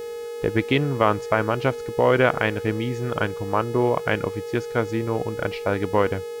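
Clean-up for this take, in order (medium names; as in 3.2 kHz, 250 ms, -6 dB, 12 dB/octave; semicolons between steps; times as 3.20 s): de-hum 423.5 Hz, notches 39; band-stop 470 Hz, Q 30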